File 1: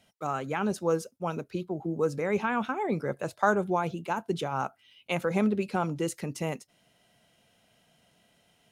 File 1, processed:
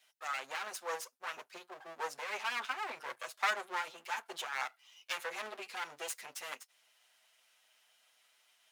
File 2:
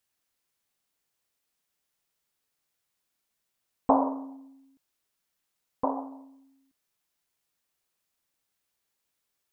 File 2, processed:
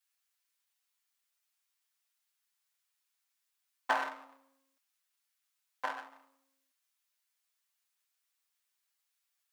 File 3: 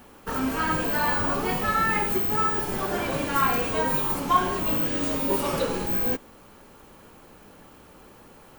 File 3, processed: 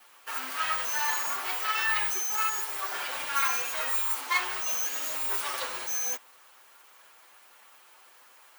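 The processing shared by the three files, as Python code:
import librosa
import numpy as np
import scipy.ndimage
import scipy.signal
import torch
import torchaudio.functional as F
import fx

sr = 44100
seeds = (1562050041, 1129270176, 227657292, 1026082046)

y = fx.lower_of_two(x, sr, delay_ms=7.9)
y = scipy.signal.sosfilt(scipy.signal.butter(2, 1100.0, 'highpass', fs=sr, output='sos'), y)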